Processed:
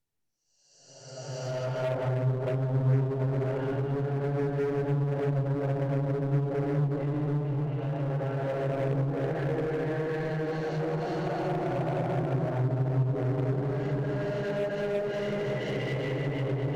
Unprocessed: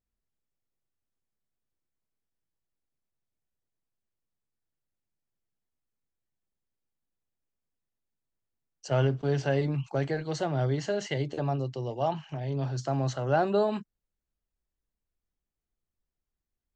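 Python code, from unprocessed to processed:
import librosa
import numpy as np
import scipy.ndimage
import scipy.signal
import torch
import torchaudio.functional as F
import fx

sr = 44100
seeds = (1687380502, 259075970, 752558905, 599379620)

p1 = fx.paulstretch(x, sr, seeds[0], factor=6.2, window_s=0.5, from_s=8.55)
p2 = fx.env_lowpass_down(p1, sr, base_hz=310.0, full_db=-22.0)
p3 = 10.0 ** (-33.5 / 20.0) * (np.abs((p2 / 10.0 ** (-33.5 / 20.0) + 3.0) % 4.0 - 2.0) - 1.0)
p4 = p2 + (p3 * 10.0 ** (-4.0 / 20.0))
y = fx.peak_eq(p4, sr, hz=1200.0, db=-2.5, octaves=0.23)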